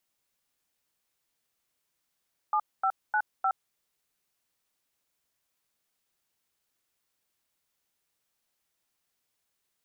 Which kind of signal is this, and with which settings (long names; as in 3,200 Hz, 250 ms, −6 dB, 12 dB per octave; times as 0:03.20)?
touch tones "7595", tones 68 ms, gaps 236 ms, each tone −25.5 dBFS